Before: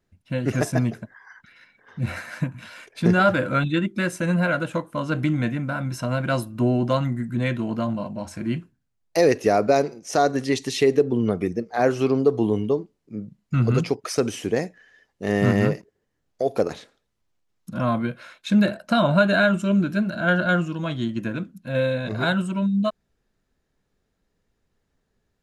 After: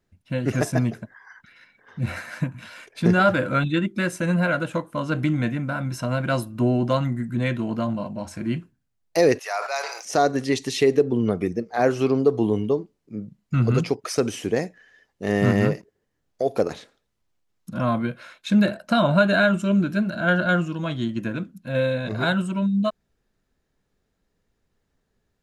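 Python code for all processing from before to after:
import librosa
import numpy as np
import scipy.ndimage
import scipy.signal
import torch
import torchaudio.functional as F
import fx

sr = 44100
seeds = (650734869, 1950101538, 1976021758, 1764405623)

y = fx.chain(x, sr, fx.cheby2_highpass(hz=250.0, order=4, stop_db=60),
    fx.sustainer(db_per_s=56.0), at=(9.39, 10.05))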